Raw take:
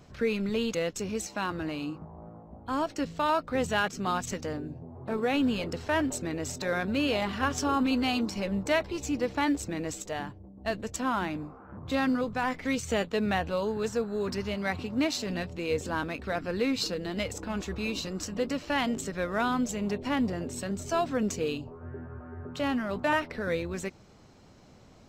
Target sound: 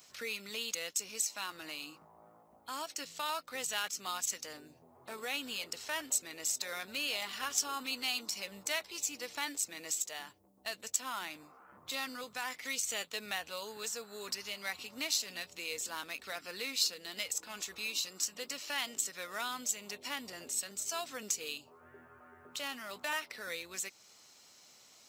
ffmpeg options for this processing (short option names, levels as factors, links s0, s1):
-filter_complex "[0:a]aderivative,bandreject=f=1600:w=19,asplit=2[s0][s1];[s1]acompressor=threshold=0.00251:ratio=6,volume=1.06[s2];[s0][s2]amix=inputs=2:normalize=0,volume=1.58"